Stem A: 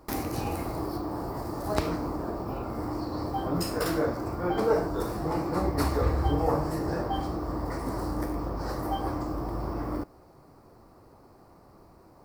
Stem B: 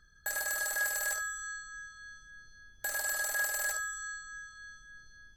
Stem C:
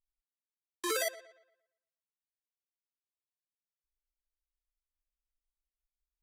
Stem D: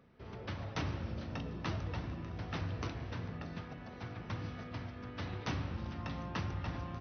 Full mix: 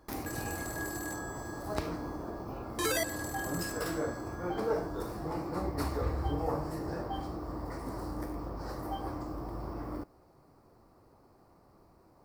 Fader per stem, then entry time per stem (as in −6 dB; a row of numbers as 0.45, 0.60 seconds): −7.0 dB, −9.0 dB, +1.0 dB, muted; 0.00 s, 0.00 s, 1.95 s, muted